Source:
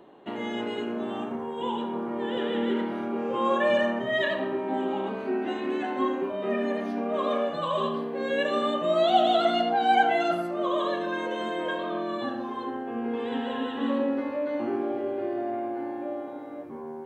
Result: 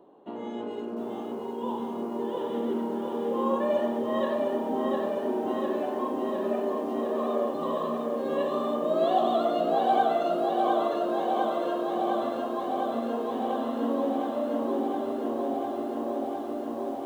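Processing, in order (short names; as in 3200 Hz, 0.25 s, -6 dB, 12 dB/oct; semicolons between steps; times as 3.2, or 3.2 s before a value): flange 1.5 Hz, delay 9.6 ms, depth 8.2 ms, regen -64%; graphic EQ 250/500/1000/2000 Hz +5/+6/+6/-9 dB; lo-fi delay 0.706 s, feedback 80%, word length 9-bit, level -4 dB; gain -5 dB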